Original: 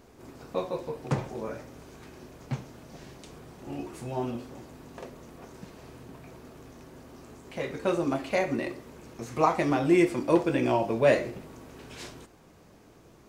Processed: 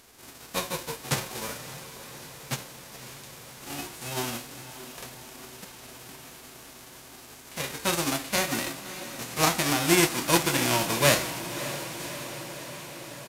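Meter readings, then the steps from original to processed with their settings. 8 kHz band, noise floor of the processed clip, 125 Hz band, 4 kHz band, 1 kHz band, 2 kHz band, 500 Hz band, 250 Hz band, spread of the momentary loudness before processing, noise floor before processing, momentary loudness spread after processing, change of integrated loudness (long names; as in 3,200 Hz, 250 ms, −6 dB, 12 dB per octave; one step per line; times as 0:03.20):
+19.5 dB, −48 dBFS, +1.5 dB, +15.5 dB, +1.0 dB, +6.5 dB, −3.5 dB, −2.5 dB, 24 LU, −55 dBFS, 22 LU, +1.0 dB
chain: spectral envelope flattened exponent 0.3
downsampling to 32,000 Hz
feedback delay with all-pass diffusion 594 ms, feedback 70%, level −12.5 dB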